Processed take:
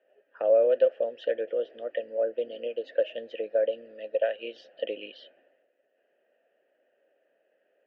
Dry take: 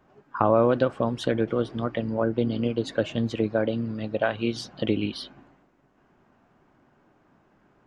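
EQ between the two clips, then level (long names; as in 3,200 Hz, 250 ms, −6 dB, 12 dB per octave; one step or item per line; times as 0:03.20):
formant filter e
loudspeaker in its box 270–6,700 Hz, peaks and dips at 450 Hz +4 dB, 650 Hz +9 dB, 1,200 Hz +5 dB, 1,700 Hz +4 dB, 3,000 Hz +10 dB, 5,200 Hz +3 dB
0.0 dB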